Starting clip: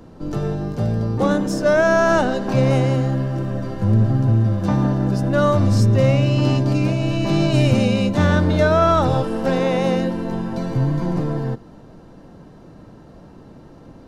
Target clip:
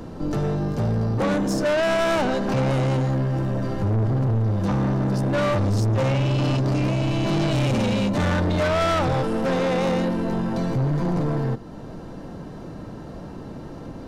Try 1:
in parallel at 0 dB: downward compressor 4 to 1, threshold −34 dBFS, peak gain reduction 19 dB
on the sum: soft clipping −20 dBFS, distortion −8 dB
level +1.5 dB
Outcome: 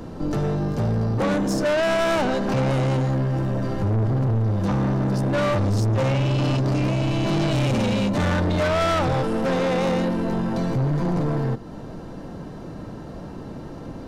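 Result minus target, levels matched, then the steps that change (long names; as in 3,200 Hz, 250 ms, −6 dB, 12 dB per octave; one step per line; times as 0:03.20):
downward compressor: peak gain reduction −4.5 dB
change: downward compressor 4 to 1, threshold −40 dBFS, peak gain reduction 23.5 dB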